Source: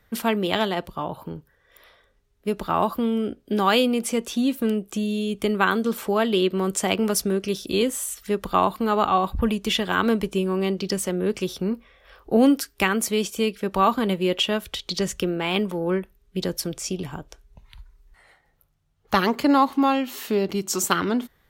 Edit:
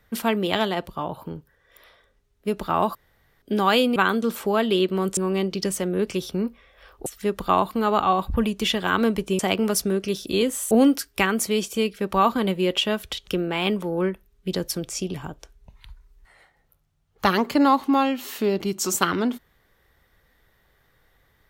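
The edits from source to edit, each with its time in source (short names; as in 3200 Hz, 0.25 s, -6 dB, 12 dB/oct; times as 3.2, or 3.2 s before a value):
2.95–3.42 room tone
3.96–5.58 cut
6.79–8.11 swap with 10.44–12.33
14.89–15.16 cut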